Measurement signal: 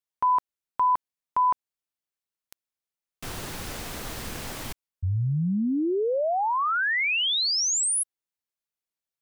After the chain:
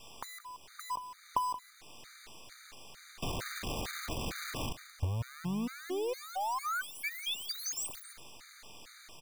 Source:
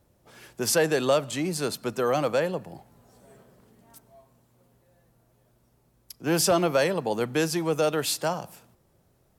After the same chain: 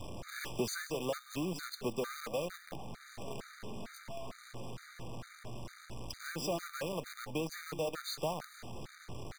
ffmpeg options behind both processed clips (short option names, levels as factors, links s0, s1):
-af "aeval=exprs='val(0)+0.5*0.0237*sgn(val(0))':c=same,lowpass=5400,adynamicequalizer=threshold=0.0178:dfrequency=380:dqfactor=3.3:tfrequency=380:tqfactor=3.3:attack=5:release=100:ratio=0.375:range=1.5:mode=cutabove:tftype=bell,acompressor=threshold=0.02:ratio=16:attack=73:release=657:knee=6:detection=peak,acrusher=bits=7:dc=4:mix=0:aa=0.000001,aecho=1:1:177:0.237,afftfilt=real='re*gt(sin(2*PI*2.2*pts/sr)*(1-2*mod(floor(b*sr/1024/1200),2)),0)':imag='im*gt(sin(2*PI*2.2*pts/sr)*(1-2*mod(floor(b*sr/1024/1200),2)),0)':win_size=1024:overlap=0.75"